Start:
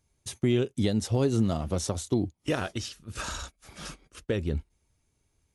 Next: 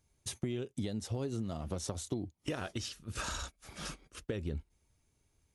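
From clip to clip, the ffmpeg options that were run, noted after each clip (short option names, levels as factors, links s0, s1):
-af "acompressor=threshold=0.0251:ratio=6,volume=0.841"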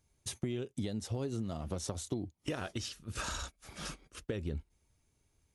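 -af anull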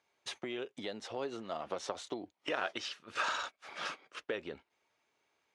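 -af "highpass=620,lowpass=3100,volume=2.51"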